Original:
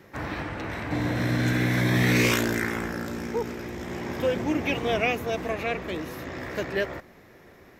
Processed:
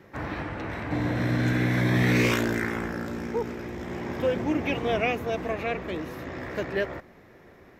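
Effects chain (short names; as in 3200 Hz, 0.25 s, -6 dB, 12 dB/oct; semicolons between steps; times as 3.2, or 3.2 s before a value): high shelf 3700 Hz -8 dB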